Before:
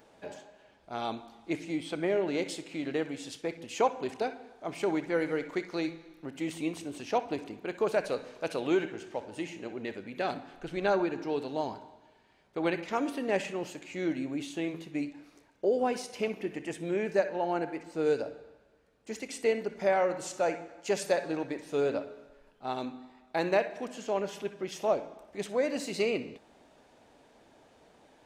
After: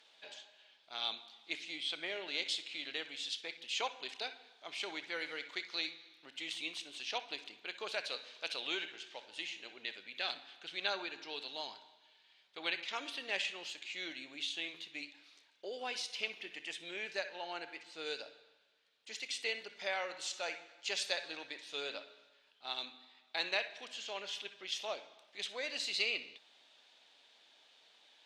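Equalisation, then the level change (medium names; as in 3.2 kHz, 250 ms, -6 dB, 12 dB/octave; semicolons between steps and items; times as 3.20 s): band-pass filter 3.6 kHz, Q 2.7; +9.5 dB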